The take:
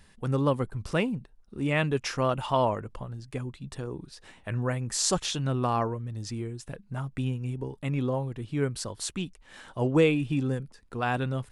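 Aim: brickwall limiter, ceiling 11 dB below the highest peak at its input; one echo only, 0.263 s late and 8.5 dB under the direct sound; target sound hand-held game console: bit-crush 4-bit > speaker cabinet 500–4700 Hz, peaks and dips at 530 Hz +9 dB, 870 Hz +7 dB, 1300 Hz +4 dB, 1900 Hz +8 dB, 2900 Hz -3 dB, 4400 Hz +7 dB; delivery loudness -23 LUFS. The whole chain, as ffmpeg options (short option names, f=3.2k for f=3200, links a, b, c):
-af "alimiter=limit=-19.5dB:level=0:latency=1,aecho=1:1:263:0.376,acrusher=bits=3:mix=0:aa=0.000001,highpass=500,equalizer=f=530:t=q:w=4:g=9,equalizer=f=870:t=q:w=4:g=7,equalizer=f=1.3k:t=q:w=4:g=4,equalizer=f=1.9k:t=q:w=4:g=8,equalizer=f=2.9k:t=q:w=4:g=-3,equalizer=f=4.4k:t=q:w=4:g=7,lowpass=f=4.7k:w=0.5412,lowpass=f=4.7k:w=1.3066,volume=5dB"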